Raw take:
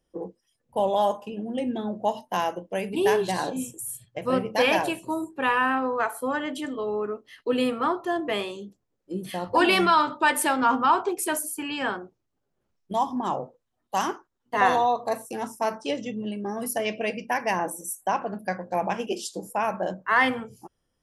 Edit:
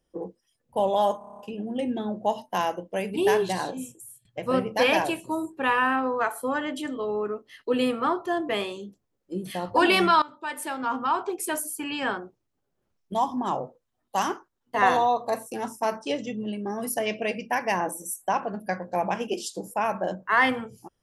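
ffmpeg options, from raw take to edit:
ffmpeg -i in.wav -filter_complex "[0:a]asplit=10[link_01][link_02][link_03][link_04][link_05][link_06][link_07][link_08][link_09][link_10];[link_01]atrim=end=1.212[link_11];[link_02]atrim=start=1.178:end=1.212[link_12];[link_03]atrim=start=1.178:end=1.212[link_13];[link_04]atrim=start=1.178:end=1.212[link_14];[link_05]atrim=start=1.178:end=1.212[link_15];[link_06]atrim=start=1.178:end=1.212[link_16];[link_07]atrim=start=1.178:end=1.212[link_17];[link_08]atrim=start=1.178:end=4.04,asetpts=PTS-STARTPTS,afade=type=out:start_time=2.062:duration=0.8:silence=0.0944061[link_18];[link_09]atrim=start=4.04:end=10.01,asetpts=PTS-STARTPTS,afade=type=in:duration=0.004:curve=hsin:silence=0.0944061,afade=type=out:start_time=5.966:duration=0.004:curve=hsin:silence=0.125893[link_19];[link_10]atrim=start=10.01,asetpts=PTS-STARTPTS,afade=type=in:duration=1.69:silence=0.125893[link_20];[link_11][link_12]acrossfade=duration=0.004:curve1=hsin:curve2=hsin[link_21];[link_21][link_13]acrossfade=duration=0.004:curve1=hsin:curve2=hsin[link_22];[link_22][link_14]acrossfade=duration=0.004:curve1=hsin:curve2=hsin[link_23];[link_23][link_15]acrossfade=duration=0.004:curve1=hsin:curve2=hsin[link_24];[link_24][link_16]acrossfade=duration=0.004:curve1=hsin:curve2=hsin[link_25];[link_25][link_17]acrossfade=duration=0.004:curve1=hsin:curve2=hsin[link_26];[link_18][link_19][link_20]concat=n=3:v=0:a=1[link_27];[link_26][link_27]acrossfade=duration=0.004:curve1=hsin:curve2=hsin" out.wav

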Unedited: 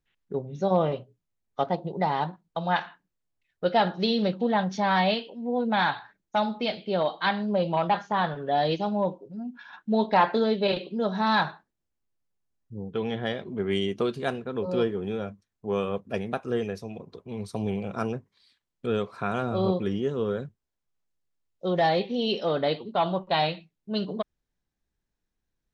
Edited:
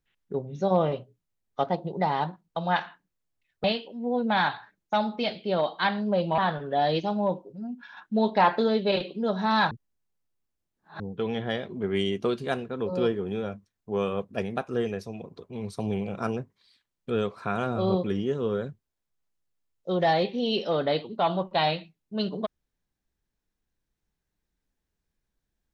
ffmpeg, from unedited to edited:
ffmpeg -i in.wav -filter_complex "[0:a]asplit=5[link_01][link_02][link_03][link_04][link_05];[link_01]atrim=end=3.642[link_06];[link_02]atrim=start=5.058:end=7.802[link_07];[link_03]atrim=start=8.138:end=11.472[link_08];[link_04]atrim=start=11.468:end=12.762,asetpts=PTS-STARTPTS,areverse[link_09];[link_05]atrim=start=12.758[link_10];[link_06][link_07]acrossfade=duration=0.004:curve1=hsin:curve2=hsin[link_11];[link_11][link_08]acrossfade=duration=0.004:curve1=hsin:curve2=hsin[link_12];[link_12][link_09]acrossfade=duration=0.004:curve1=hsin:curve2=hsin[link_13];[link_13][link_10]acrossfade=duration=0.004:curve1=hsin:curve2=hsin" out.wav

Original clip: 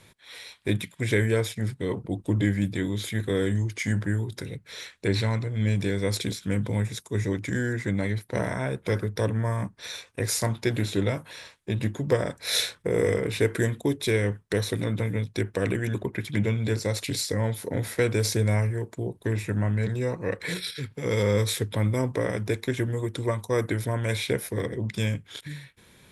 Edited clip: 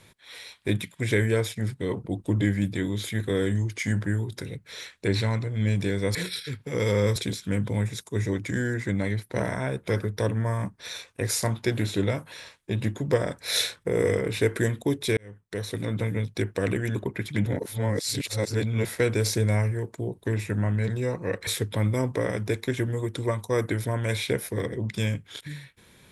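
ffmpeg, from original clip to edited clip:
ffmpeg -i in.wav -filter_complex "[0:a]asplit=7[link_01][link_02][link_03][link_04][link_05][link_06][link_07];[link_01]atrim=end=6.152[link_08];[link_02]atrim=start=20.458:end=21.472[link_09];[link_03]atrim=start=6.148:end=14.16,asetpts=PTS-STARTPTS,afade=type=out:start_time=8.008:duration=0.004:curve=hsin[link_10];[link_04]atrim=start=14.16:end=16.452,asetpts=PTS-STARTPTS,afade=type=in:duration=0.86[link_11];[link_05]atrim=start=16.448:end=17.842,asetpts=PTS-STARTPTS,areverse[link_12];[link_06]atrim=start=17.838:end=20.462[link_13];[link_07]atrim=start=21.468[link_14];[link_08][link_09]acrossfade=duration=0.004:curve1=hsin:curve2=hsin[link_15];[link_10][link_11]concat=n=2:v=0:a=1[link_16];[link_15][link_16]acrossfade=duration=0.004:curve1=hsin:curve2=hsin[link_17];[link_17][link_12]acrossfade=duration=0.004:curve1=hsin:curve2=hsin[link_18];[link_18][link_13]acrossfade=duration=0.004:curve1=hsin:curve2=hsin[link_19];[link_19][link_14]acrossfade=duration=0.004:curve1=hsin:curve2=hsin" out.wav

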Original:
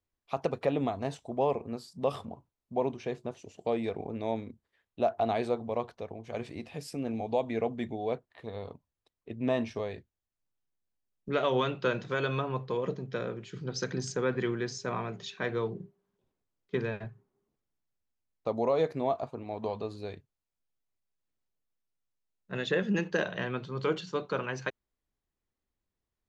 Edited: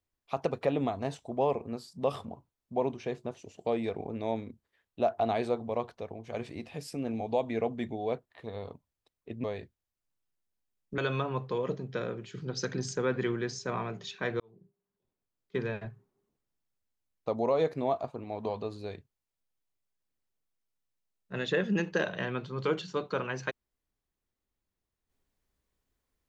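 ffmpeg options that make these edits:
ffmpeg -i in.wav -filter_complex "[0:a]asplit=4[link_01][link_02][link_03][link_04];[link_01]atrim=end=9.442[link_05];[link_02]atrim=start=9.788:end=11.332[link_06];[link_03]atrim=start=12.168:end=15.59,asetpts=PTS-STARTPTS,afade=type=out:start_time=3.418:duration=0.004:curve=hsin[link_07];[link_04]atrim=start=15.59,asetpts=PTS-STARTPTS,afade=type=in:duration=1.39[link_08];[link_05][link_06]acrossfade=duration=0.004:curve1=hsin:curve2=hsin[link_09];[link_07][link_08]concat=n=2:v=0:a=1[link_10];[link_09][link_10]acrossfade=duration=0.004:curve1=hsin:curve2=hsin" out.wav

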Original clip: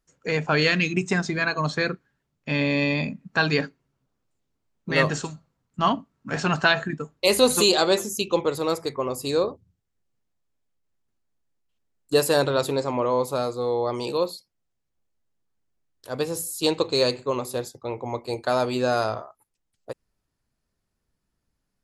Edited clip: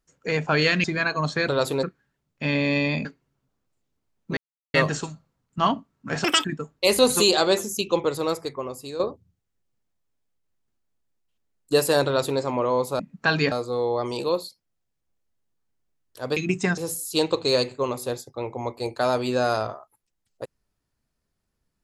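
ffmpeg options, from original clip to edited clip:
ffmpeg -i in.wav -filter_complex "[0:a]asplit=13[link_01][link_02][link_03][link_04][link_05][link_06][link_07][link_08][link_09][link_10][link_11][link_12][link_13];[link_01]atrim=end=0.842[link_14];[link_02]atrim=start=1.248:end=1.892[link_15];[link_03]atrim=start=12.458:end=12.812[link_16];[link_04]atrim=start=1.888:end=3.112[link_17];[link_05]atrim=start=3.628:end=4.95,asetpts=PTS-STARTPTS,afade=type=out:start_time=1.318:duration=0.004:curve=hsin,apad=pad_dur=0.37[link_18];[link_06]atrim=start=4.95:end=6.454,asetpts=PTS-STARTPTS,afade=type=in:duration=0.004:curve=hsin[link_19];[link_07]atrim=start=6.45:end=6.85,asetpts=PTS-STARTPTS,asetrate=85995,aresample=44100,atrim=end_sample=9046,asetpts=PTS-STARTPTS[link_20];[link_08]atrim=start=6.846:end=9.4,asetpts=PTS-STARTPTS,afade=type=out:start_time=1.764:duration=0.79:silence=0.251189[link_21];[link_09]atrim=start=9.4:end=13.402,asetpts=PTS-STARTPTS,afade=type=in:duration=0.004:curve=hsin:silence=0.251189[link_22];[link_10]atrim=start=3.108:end=3.632[link_23];[link_11]atrim=start=13.398:end=16.252[link_24];[link_12]atrim=start=0.838:end=1.252[link_25];[link_13]atrim=start=16.248[link_26];[link_14][link_15]acrossfade=duration=0.004:curve1=hsin:curve2=hsin[link_27];[link_27][link_16]acrossfade=duration=0.004:curve1=hsin:curve2=hsin[link_28];[link_28][link_17]acrossfade=duration=0.004:curve1=hsin:curve2=hsin[link_29];[link_18][link_19]concat=n=2:v=0:a=1[link_30];[link_29][link_30]acrossfade=duration=0.004:curve1=hsin:curve2=hsin[link_31];[link_31][link_20]acrossfade=duration=0.004:curve1=hsin:curve2=hsin[link_32];[link_21][link_22]concat=n=2:v=0:a=1[link_33];[link_32][link_33]acrossfade=duration=0.004:curve1=hsin:curve2=hsin[link_34];[link_34][link_23]acrossfade=duration=0.004:curve1=hsin:curve2=hsin[link_35];[link_35][link_24]acrossfade=duration=0.004:curve1=hsin:curve2=hsin[link_36];[link_36][link_25]acrossfade=duration=0.004:curve1=hsin:curve2=hsin[link_37];[link_37][link_26]acrossfade=duration=0.004:curve1=hsin:curve2=hsin" out.wav

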